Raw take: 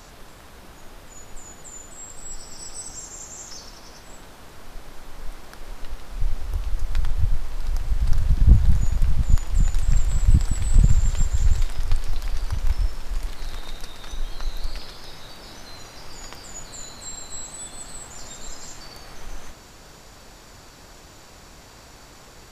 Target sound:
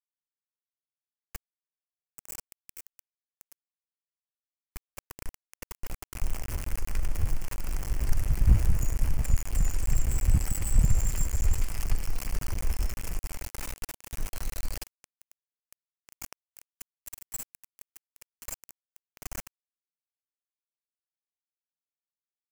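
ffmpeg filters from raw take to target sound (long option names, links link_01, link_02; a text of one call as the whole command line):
ffmpeg -i in.wav -filter_complex "[0:a]asplit=2[link_01][link_02];[link_02]adelay=1574,volume=-16dB,highshelf=frequency=4000:gain=-35.4[link_03];[link_01][link_03]amix=inputs=2:normalize=0,aeval=exprs='val(0)*gte(abs(val(0)),0.0501)':channel_layout=same,aexciter=amount=1.4:drive=0.9:freq=2000,volume=-6.5dB" out.wav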